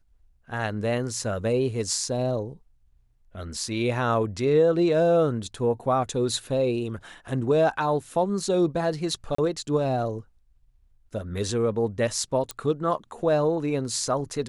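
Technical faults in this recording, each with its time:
9.35–9.38 s: dropout 34 ms
12.51 s: pop -16 dBFS

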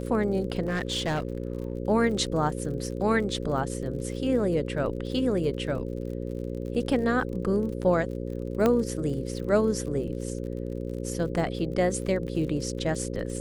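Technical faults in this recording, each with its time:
buzz 60 Hz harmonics 9 -33 dBFS
crackle 48 per s -37 dBFS
0.66–1.75 s: clipped -23.5 dBFS
8.66 s: pop -11 dBFS

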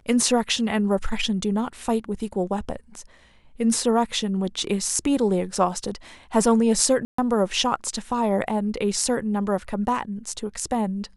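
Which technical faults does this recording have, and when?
7.05–7.18 s: dropout 134 ms

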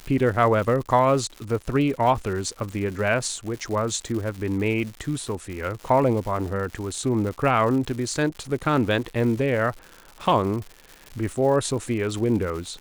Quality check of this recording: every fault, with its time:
crackle 220 per s -32 dBFS

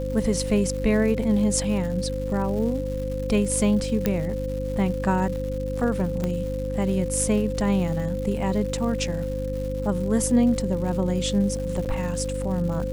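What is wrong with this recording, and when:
crackle 280 per s -34 dBFS
hum 50 Hz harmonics 6 -30 dBFS
whine 520 Hz -29 dBFS
4.06 s: pop -8 dBFS
6.24 s: pop -14 dBFS
11.85–11.86 s: dropout 8.4 ms

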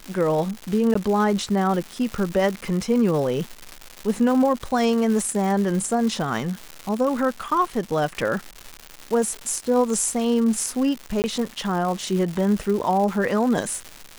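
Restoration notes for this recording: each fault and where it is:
crackle 310 per s -27 dBFS
0.94–0.95 s: dropout 14 ms
11.22–11.24 s: dropout 19 ms

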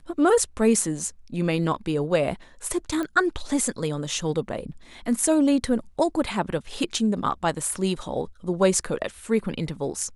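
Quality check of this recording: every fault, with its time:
3.03 s: pop -18 dBFS

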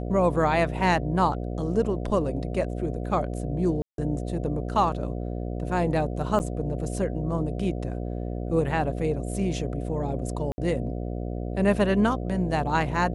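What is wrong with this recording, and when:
buzz 60 Hz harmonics 12 -31 dBFS
3.82–3.98 s: dropout 162 ms
6.39–6.40 s: dropout 9 ms
10.52–10.58 s: dropout 60 ms

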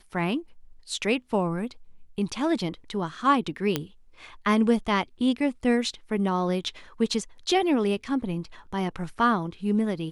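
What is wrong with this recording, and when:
3.76 s: pop -10 dBFS

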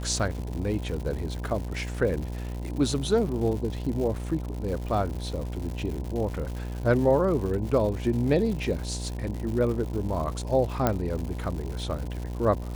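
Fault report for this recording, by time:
buzz 60 Hz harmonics 17 -33 dBFS
crackle 210 per s -34 dBFS
10.87 s: pop -9 dBFS

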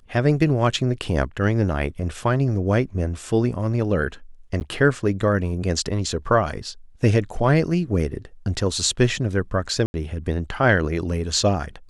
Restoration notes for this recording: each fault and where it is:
4.60–4.61 s: dropout 9.6 ms
9.86–9.94 s: dropout 80 ms

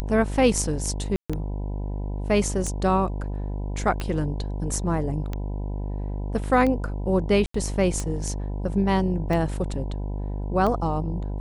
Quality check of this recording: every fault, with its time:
buzz 50 Hz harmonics 20 -29 dBFS
tick 45 rpm -16 dBFS
1.16–1.30 s: dropout 136 ms
7.46–7.54 s: dropout 84 ms

